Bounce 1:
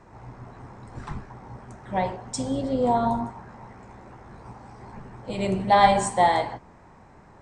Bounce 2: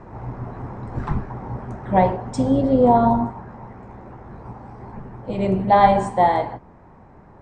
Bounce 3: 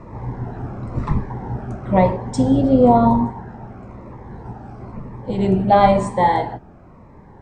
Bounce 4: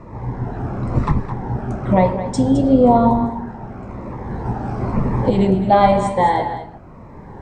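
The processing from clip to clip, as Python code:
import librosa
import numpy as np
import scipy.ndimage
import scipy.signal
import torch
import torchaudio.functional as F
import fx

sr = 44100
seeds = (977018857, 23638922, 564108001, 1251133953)

y1 = fx.lowpass(x, sr, hz=1000.0, slope=6)
y1 = fx.rider(y1, sr, range_db=10, speed_s=2.0)
y1 = y1 * 10.0 ** (7.0 / 20.0)
y2 = fx.notch_cascade(y1, sr, direction='falling', hz=1.0)
y2 = y2 * 10.0 ** (4.0 / 20.0)
y3 = fx.recorder_agc(y2, sr, target_db=-7.5, rise_db_per_s=7.6, max_gain_db=30)
y3 = y3 + 10.0 ** (-11.5 / 20.0) * np.pad(y3, (int(213 * sr / 1000.0), 0))[:len(y3)]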